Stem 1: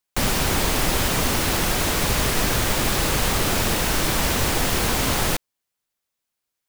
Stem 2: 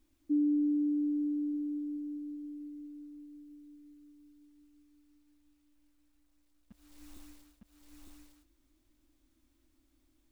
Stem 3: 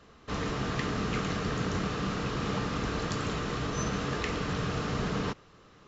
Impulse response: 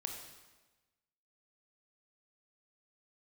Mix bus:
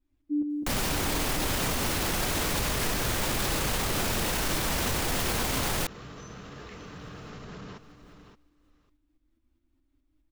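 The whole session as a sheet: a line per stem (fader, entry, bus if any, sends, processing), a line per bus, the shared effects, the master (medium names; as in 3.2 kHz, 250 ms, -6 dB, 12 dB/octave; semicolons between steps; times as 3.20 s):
+1.5 dB, 0.50 s, no send, no echo send, none
+1.0 dB, 0.00 s, no send, echo send -10.5 dB, tremolo saw up 4.8 Hz, depth 60%; tone controls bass +6 dB, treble -11 dB; endless flanger 8.2 ms +0.91 Hz
-8.0 dB, 2.45 s, no send, echo send -11.5 dB, upward compressor, threshold -45 dBFS; peak limiter -27 dBFS, peak gain reduction 9.5 dB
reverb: none
echo: delay 572 ms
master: peak limiter -19 dBFS, peak gain reduction 11.5 dB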